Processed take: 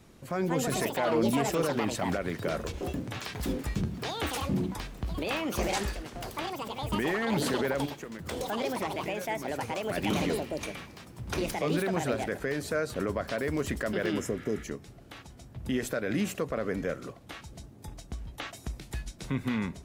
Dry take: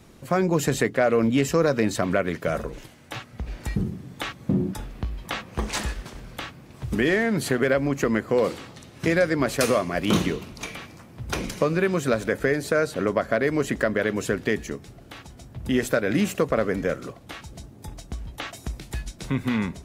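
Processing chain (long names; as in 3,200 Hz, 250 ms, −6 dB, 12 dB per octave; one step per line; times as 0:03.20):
0:07.85–0:09.92: downward compressor 6 to 1, threshold −34 dBFS, peak gain reduction 16.5 dB
0:14.17–0:14.61: healed spectral selection 1,200–4,900 Hz before
brickwall limiter −15.5 dBFS, peak gain reduction 7.5 dB
delay with pitch and tempo change per echo 281 ms, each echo +6 semitones, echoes 2
level −5 dB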